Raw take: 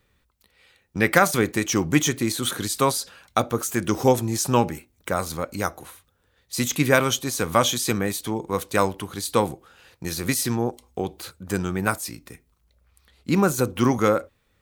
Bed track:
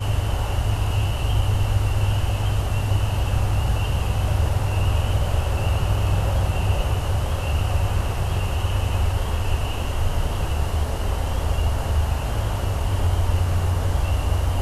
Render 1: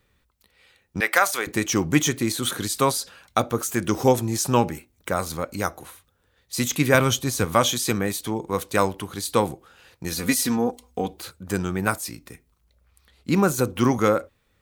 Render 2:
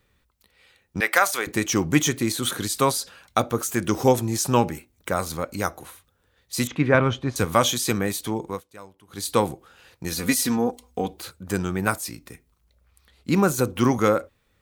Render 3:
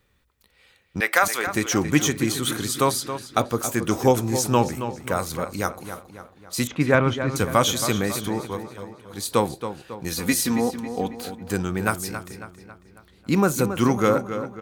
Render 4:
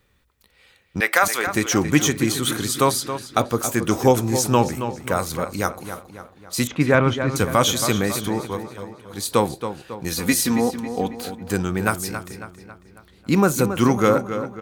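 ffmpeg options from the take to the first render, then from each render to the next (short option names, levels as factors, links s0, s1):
-filter_complex "[0:a]asettb=1/sr,asplit=3[s0][s1][s2];[s0]atrim=end=1.004[s3];[s1]atrim=start=1:end=1.47,asetpts=PTS-STARTPTS,afade=t=in:d=0.004:c=qsin,afade=t=out:st=0.466:d=0.004:c=qsin,highpass=670[s4];[s2]atrim=start=1.466[s5];[s3][s4]acrossfade=d=0.004:c1=hsin:c2=qsin[s6];[s6][s5]acrossfade=d=0.004:c1=qsin:c2=hsin,asettb=1/sr,asplit=3[s7][s8][s9];[s7]atrim=end=6.944[s10];[s8]atrim=start=6.94:end=7.45,asetpts=PTS-STARTPTS,afade=t=in:d=0.004:c=qsin,afade=t=out:st=0.506:d=0.004:c=qsin,equalizer=f=79:t=o:w=2.1:g=9[s11];[s9]atrim=start=7.446[s12];[s10][s11]acrossfade=d=0.004:c1=hsin:c2=qsin[s13];[s13][s12]acrossfade=d=0.004:c1=qsin:c2=hsin,asettb=1/sr,asplit=3[s14][s15][s16];[s14]atrim=end=10.124[s17];[s15]atrim=start=10.12:end=11.14,asetpts=PTS-STARTPTS,afade=t=in:d=0.004:c=qsin,afade=t=out:st=1.016:d=0.004:c=qsin,aecho=1:1:4.1:0.65,atrim=end_sample=44982[s18];[s16]atrim=start=11.136[s19];[s17][s18]acrossfade=d=0.004:c1=hsin:c2=qsin[s20];[s20][s19]acrossfade=d=0.004:c1=qsin:c2=hsin"
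-filter_complex "[0:a]asettb=1/sr,asplit=3[s0][s1][s2];[s0]atrim=end=6.674[s3];[s1]atrim=start=6.67:end=7.36,asetpts=PTS-STARTPTS,afade=t=in:d=0.004:c=qsin,afade=t=out:st=0.686:d=0.004:c=qsin,lowpass=2100[s4];[s2]atrim=start=7.356[s5];[s3][s4]acrossfade=d=0.004:c1=hsin:c2=qsin[s6];[s6][s5]acrossfade=d=0.004:c1=qsin:c2=hsin,asplit=3[s7][s8][s9];[s7]atrim=end=8.62,asetpts=PTS-STARTPTS,afade=t=out:st=8.46:d=0.16:silence=0.0749894[s10];[s8]atrim=start=8.62:end=9.07,asetpts=PTS-STARTPTS,volume=0.075[s11];[s9]atrim=start=9.07,asetpts=PTS-STARTPTS,afade=t=in:d=0.16:silence=0.0749894[s12];[s10][s11][s12]concat=n=3:v=0:a=1"
-filter_complex "[0:a]asplit=2[s0][s1];[s1]adelay=274,lowpass=f=4400:p=1,volume=0.316,asplit=2[s2][s3];[s3]adelay=274,lowpass=f=4400:p=1,volume=0.51,asplit=2[s4][s5];[s5]adelay=274,lowpass=f=4400:p=1,volume=0.51,asplit=2[s6][s7];[s7]adelay=274,lowpass=f=4400:p=1,volume=0.51,asplit=2[s8][s9];[s9]adelay=274,lowpass=f=4400:p=1,volume=0.51,asplit=2[s10][s11];[s11]adelay=274,lowpass=f=4400:p=1,volume=0.51[s12];[s0][s2][s4][s6][s8][s10][s12]amix=inputs=7:normalize=0"
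-af "volume=1.33,alimiter=limit=0.708:level=0:latency=1"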